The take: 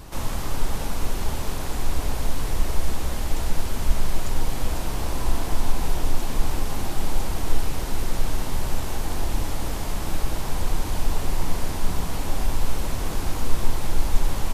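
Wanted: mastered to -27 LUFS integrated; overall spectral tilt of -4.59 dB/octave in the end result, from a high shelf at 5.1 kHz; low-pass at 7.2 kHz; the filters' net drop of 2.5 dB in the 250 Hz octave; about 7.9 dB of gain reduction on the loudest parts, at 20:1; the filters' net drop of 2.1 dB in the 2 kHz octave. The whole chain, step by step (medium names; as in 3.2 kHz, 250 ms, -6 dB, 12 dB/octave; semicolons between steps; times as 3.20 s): low-pass 7.2 kHz; peaking EQ 250 Hz -3.5 dB; peaking EQ 2 kHz -4 dB; treble shelf 5.1 kHz +8.5 dB; compression 20:1, threshold -16 dBFS; trim +5 dB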